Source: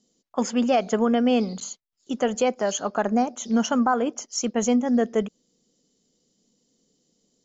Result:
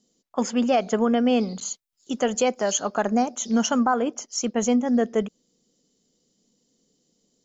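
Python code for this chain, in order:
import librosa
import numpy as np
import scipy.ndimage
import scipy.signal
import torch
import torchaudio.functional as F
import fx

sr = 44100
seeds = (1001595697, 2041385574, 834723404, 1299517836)

y = fx.high_shelf(x, sr, hz=4200.0, db=7.0, at=(1.65, 3.83))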